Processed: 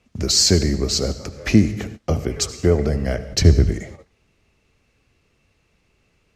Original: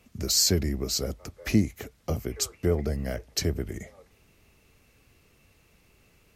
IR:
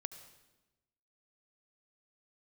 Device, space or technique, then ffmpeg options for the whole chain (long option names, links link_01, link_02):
keyed gated reverb: -filter_complex "[0:a]asplit=3[link_01][link_02][link_03];[1:a]atrim=start_sample=2205[link_04];[link_02][link_04]afir=irnorm=-1:irlink=0[link_05];[link_03]apad=whole_len=280041[link_06];[link_05][link_06]sidechaingate=range=-33dB:threshold=-49dB:ratio=16:detection=peak,volume=11dB[link_07];[link_01][link_07]amix=inputs=2:normalize=0,lowpass=6900,asettb=1/sr,asplit=3[link_08][link_09][link_10];[link_08]atrim=end=3.324[link_11];[link_09]atrim=start=3.32:end=3.74,asetpts=PTS-STARTPTS,afade=type=in:duration=0.004:curve=qsin,afade=type=out:start_time=0.416:duration=0.004:curve=qsin,lowshelf=frequency=160:gain=12[link_12];[link_10]atrim=start=3.736[link_13];[link_11][link_12]acrossfade=duration=0.004:curve1=hsin:curve2=qsin[link_14];[link_14][link_13]acrossfade=duration=0.004:curve1=qsin:curve2=hsin,volume=-2.5dB"